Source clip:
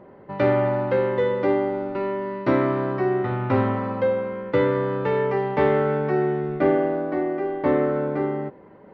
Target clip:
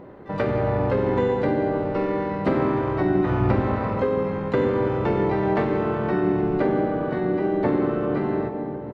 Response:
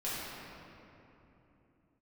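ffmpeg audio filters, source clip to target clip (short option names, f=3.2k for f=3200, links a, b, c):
-filter_complex "[0:a]acompressor=threshold=-23dB:ratio=12,asplit=2[a][b];[1:a]atrim=start_sample=2205[c];[b][c]afir=irnorm=-1:irlink=0,volume=-9dB[d];[a][d]amix=inputs=2:normalize=0,asplit=4[e][f][g][h];[f]asetrate=22050,aresample=44100,atempo=2,volume=-7dB[i];[g]asetrate=35002,aresample=44100,atempo=1.25992,volume=-3dB[j];[h]asetrate=88200,aresample=44100,atempo=0.5,volume=-16dB[k];[e][i][j][k]amix=inputs=4:normalize=0"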